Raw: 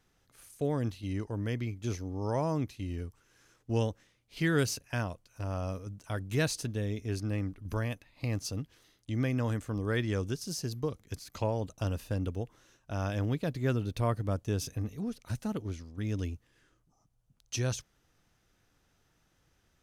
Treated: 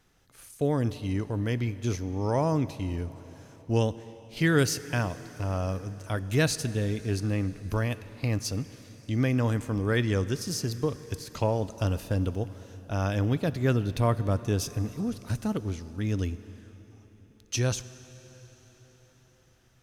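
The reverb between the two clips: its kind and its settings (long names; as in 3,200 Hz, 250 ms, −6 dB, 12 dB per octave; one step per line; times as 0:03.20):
dense smooth reverb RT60 4.8 s, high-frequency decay 0.95×, DRR 14.5 dB
level +5 dB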